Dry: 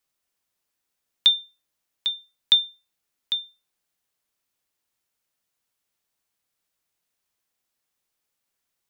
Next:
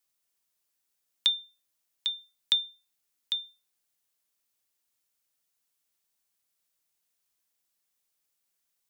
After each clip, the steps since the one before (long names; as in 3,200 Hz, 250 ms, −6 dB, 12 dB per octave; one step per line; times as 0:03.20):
high-shelf EQ 3,900 Hz +8 dB
mains-hum notches 50/100/150 Hz
downward compressor 1.5 to 1, threshold −26 dBFS, peak gain reduction 6.5 dB
level −5.5 dB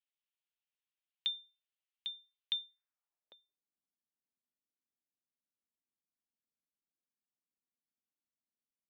band-pass filter sweep 3,000 Hz → 240 Hz, 0:02.57–0:03.66
high-frequency loss of the air 270 metres
level −1.5 dB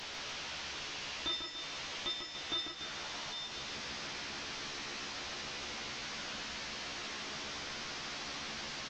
linear delta modulator 32 kbit/s, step −44 dBFS
double-tracking delay 14 ms −3 dB
repeating echo 145 ms, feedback 53%, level −4.5 dB
level +5 dB